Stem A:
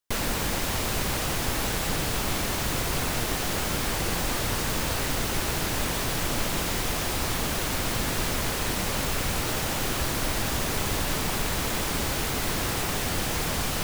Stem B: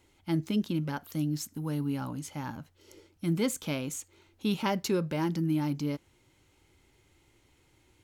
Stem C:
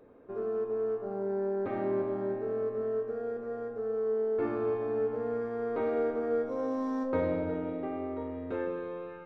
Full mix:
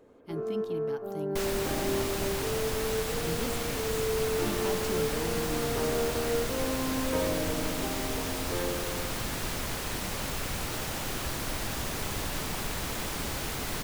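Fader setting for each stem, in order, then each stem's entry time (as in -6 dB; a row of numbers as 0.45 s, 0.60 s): -6.0 dB, -9.5 dB, -0.5 dB; 1.25 s, 0.00 s, 0.00 s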